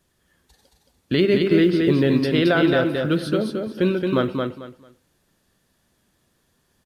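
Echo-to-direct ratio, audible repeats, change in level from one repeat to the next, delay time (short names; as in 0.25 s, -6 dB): -4.0 dB, 3, -13.0 dB, 0.222 s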